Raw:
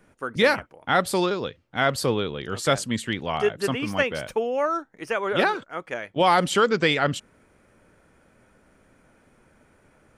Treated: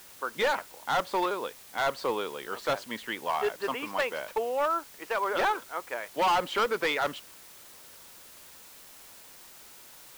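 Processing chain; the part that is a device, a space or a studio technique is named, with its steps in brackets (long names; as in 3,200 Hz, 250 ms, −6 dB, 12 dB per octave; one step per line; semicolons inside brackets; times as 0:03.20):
drive-through speaker (band-pass filter 410–3,100 Hz; parametric band 970 Hz +7.5 dB 0.48 octaves; hard clipping −18 dBFS, distortion −8 dB; white noise bed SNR 19 dB)
level −3.5 dB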